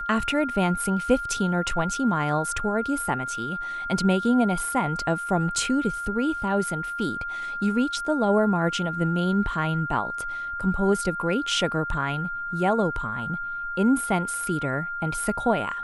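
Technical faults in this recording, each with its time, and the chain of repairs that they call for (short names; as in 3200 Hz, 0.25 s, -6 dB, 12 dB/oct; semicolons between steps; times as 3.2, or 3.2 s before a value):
tone 1400 Hz -29 dBFS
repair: notch 1400 Hz, Q 30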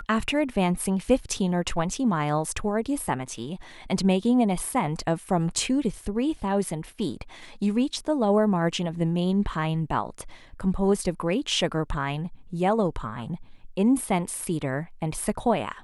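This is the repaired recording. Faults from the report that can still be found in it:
none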